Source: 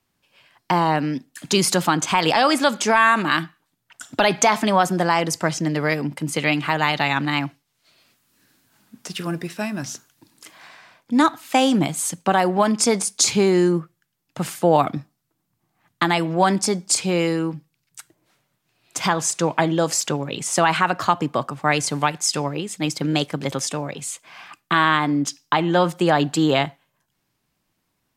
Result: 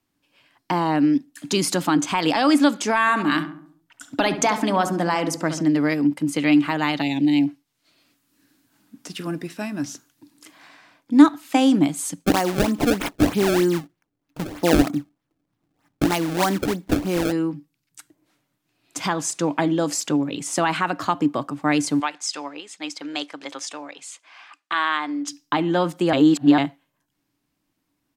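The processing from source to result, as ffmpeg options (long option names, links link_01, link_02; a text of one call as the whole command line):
ffmpeg -i in.wav -filter_complex "[0:a]asplit=3[link_01][link_02][link_03];[link_01]afade=type=out:start_time=3.06:duration=0.02[link_04];[link_02]asplit=2[link_05][link_06];[link_06]adelay=69,lowpass=frequency=1400:poles=1,volume=-8.5dB,asplit=2[link_07][link_08];[link_08]adelay=69,lowpass=frequency=1400:poles=1,volume=0.52,asplit=2[link_09][link_10];[link_10]adelay=69,lowpass=frequency=1400:poles=1,volume=0.52,asplit=2[link_11][link_12];[link_12]adelay=69,lowpass=frequency=1400:poles=1,volume=0.52,asplit=2[link_13][link_14];[link_14]adelay=69,lowpass=frequency=1400:poles=1,volume=0.52,asplit=2[link_15][link_16];[link_16]adelay=69,lowpass=frequency=1400:poles=1,volume=0.52[link_17];[link_05][link_07][link_09][link_11][link_13][link_15][link_17]amix=inputs=7:normalize=0,afade=type=in:start_time=3.06:duration=0.02,afade=type=out:start_time=5.62:duration=0.02[link_18];[link_03]afade=type=in:start_time=5.62:duration=0.02[link_19];[link_04][link_18][link_19]amix=inputs=3:normalize=0,asplit=3[link_20][link_21][link_22];[link_20]afade=type=out:start_time=7.01:duration=0.02[link_23];[link_21]asuperstop=centerf=1300:order=4:qfactor=0.77,afade=type=in:start_time=7.01:duration=0.02,afade=type=out:start_time=7.46:duration=0.02[link_24];[link_22]afade=type=in:start_time=7.46:duration=0.02[link_25];[link_23][link_24][link_25]amix=inputs=3:normalize=0,asplit=3[link_26][link_27][link_28];[link_26]afade=type=out:start_time=12.24:duration=0.02[link_29];[link_27]acrusher=samples=26:mix=1:aa=0.000001:lfo=1:lforange=41.6:lforate=3.2,afade=type=in:start_time=12.24:duration=0.02,afade=type=out:start_time=17.31:duration=0.02[link_30];[link_28]afade=type=in:start_time=17.31:duration=0.02[link_31];[link_29][link_30][link_31]amix=inputs=3:normalize=0,asettb=1/sr,asplit=3[link_32][link_33][link_34];[link_32]atrim=end=22.004[link_35];[link_33]atrim=start=22:end=25.28,asetpts=PTS-STARTPTS,afade=type=in:duration=0.004:curve=qsin,afade=type=out:start_time=3.276:duration=0.004:curve=qsin,highpass=720,lowpass=6900[link_36];[link_34]atrim=start=25.276[link_37];[link_35][link_36]acrossfade=duration=0.004:curve1=hsin:curve2=qsin[link_38];[link_38][link_37]acrossfade=duration=0.004:curve1=qsin:curve2=hsin,asplit=3[link_39][link_40][link_41];[link_39]atrim=end=26.132[link_42];[link_40]atrim=start=26.128:end=26.582,asetpts=PTS-STARTPTS,areverse[link_43];[link_41]atrim=start=26.578[link_44];[link_42][link_43]acrossfade=duration=0.004:curve1=hsin:curve2=hsin[link_45];[link_45][link_44]acrossfade=duration=0.004:curve1=hsin:curve2=hsin,equalizer=frequency=290:width=5.8:gain=14.5,volume=-4dB" out.wav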